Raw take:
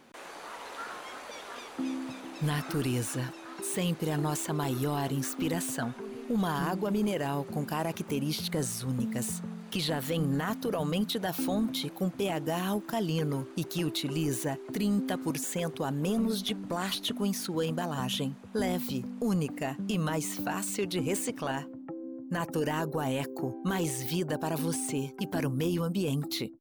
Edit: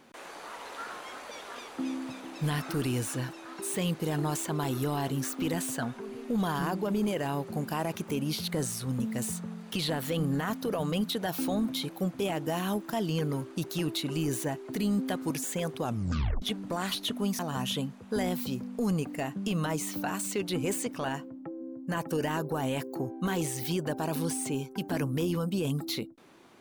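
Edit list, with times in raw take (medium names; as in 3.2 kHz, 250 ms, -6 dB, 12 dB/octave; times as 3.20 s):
15.83 s: tape stop 0.59 s
17.39–17.82 s: delete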